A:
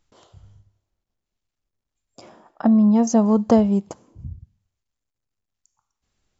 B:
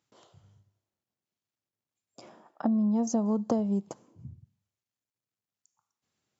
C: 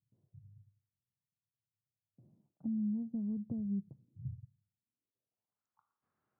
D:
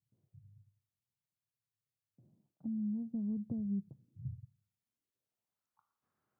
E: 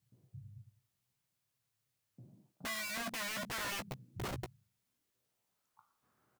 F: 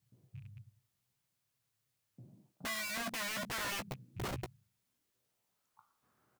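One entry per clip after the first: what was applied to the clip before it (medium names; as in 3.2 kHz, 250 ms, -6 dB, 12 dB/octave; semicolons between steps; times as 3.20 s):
high-pass 110 Hz 24 dB/octave; dynamic bell 2.2 kHz, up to -8 dB, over -43 dBFS, Q 0.97; compression 6:1, threshold -18 dBFS, peak gain reduction 8 dB; trim -5.5 dB
low-pass sweep 130 Hz -> 1.3 kHz, 4.59–5.62 s; trim -3.5 dB
gain riding 0.5 s; trim +1 dB
integer overflow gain 44 dB; doubling 16 ms -8 dB; trim +8.5 dB
rattle on loud lows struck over -48 dBFS, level -55 dBFS; trim +1 dB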